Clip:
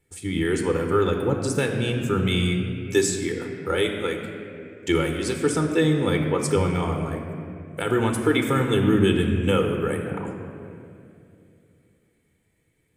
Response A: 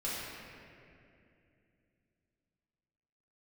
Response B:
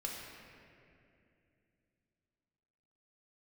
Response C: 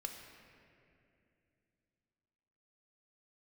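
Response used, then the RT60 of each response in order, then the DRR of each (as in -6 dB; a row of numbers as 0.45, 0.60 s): C; 2.6, 2.6, 2.6 s; -8.5, -2.0, 3.0 dB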